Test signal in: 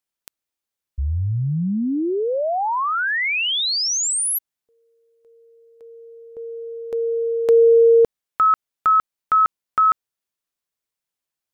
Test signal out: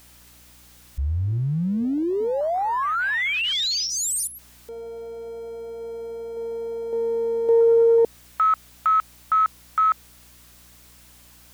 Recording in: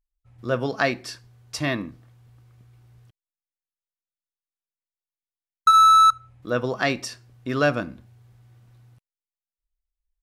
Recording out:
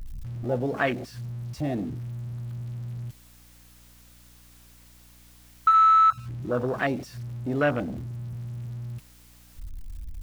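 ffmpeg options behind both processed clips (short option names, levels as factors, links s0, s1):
-af "aeval=exprs='val(0)+0.5*0.0668*sgn(val(0))':c=same,afwtdn=0.0891,aeval=exprs='val(0)+0.00316*(sin(2*PI*60*n/s)+sin(2*PI*2*60*n/s)/2+sin(2*PI*3*60*n/s)/3+sin(2*PI*4*60*n/s)/4+sin(2*PI*5*60*n/s)/5)':c=same,volume=0.596"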